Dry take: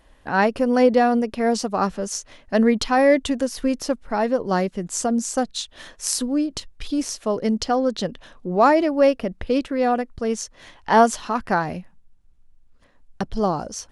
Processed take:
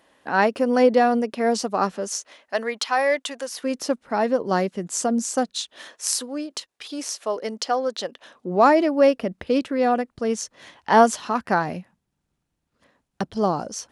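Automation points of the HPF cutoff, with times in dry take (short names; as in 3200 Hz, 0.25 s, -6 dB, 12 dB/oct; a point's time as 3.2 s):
1.95 s 220 Hz
2.62 s 700 Hz
3.46 s 700 Hz
3.89 s 170 Hz
5.44 s 170 Hz
6.11 s 480 Hz
8.09 s 480 Hz
8.65 s 130 Hz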